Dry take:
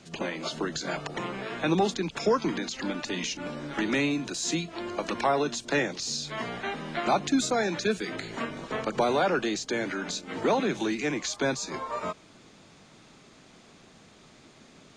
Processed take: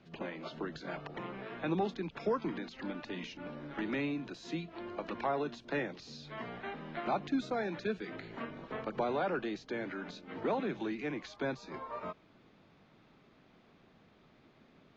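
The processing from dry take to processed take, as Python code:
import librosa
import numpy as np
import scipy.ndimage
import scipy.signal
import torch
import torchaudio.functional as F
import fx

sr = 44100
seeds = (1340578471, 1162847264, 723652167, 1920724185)

y = fx.air_absorb(x, sr, metres=270.0)
y = y * 10.0 ** (-7.5 / 20.0)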